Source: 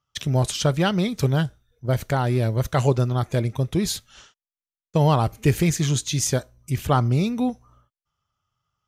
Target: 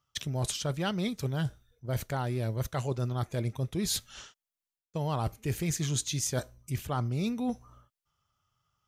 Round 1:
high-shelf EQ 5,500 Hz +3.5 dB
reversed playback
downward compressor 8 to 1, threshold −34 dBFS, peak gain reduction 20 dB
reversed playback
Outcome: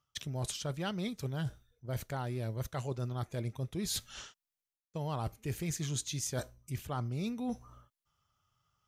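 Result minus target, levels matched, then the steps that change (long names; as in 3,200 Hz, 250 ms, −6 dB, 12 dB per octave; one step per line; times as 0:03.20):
downward compressor: peak gain reduction +5 dB
change: downward compressor 8 to 1, threshold −28 dBFS, peak gain reduction 15 dB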